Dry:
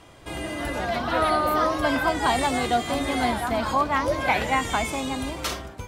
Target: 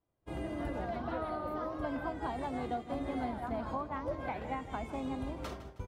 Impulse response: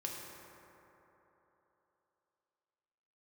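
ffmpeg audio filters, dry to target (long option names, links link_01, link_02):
-filter_complex "[0:a]acompressor=threshold=-30dB:ratio=6,agate=range=-33dB:threshold=-30dB:ratio=3:detection=peak,tiltshelf=frequency=1400:gain=8,asplit=2[link_01][link_02];[link_02]aecho=0:1:158|316|474|632:0.2|0.0758|0.0288|0.0109[link_03];[link_01][link_03]amix=inputs=2:normalize=0,adynamicequalizer=threshold=0.00282:dfrequency=5300:dqfactor=0.7:tfrequency=5300:tqfactor=0.7:attack=5:release=100:ratio=0.375:range=2:mode=cutabove:tftype=highshelf,volume=-7.5dB"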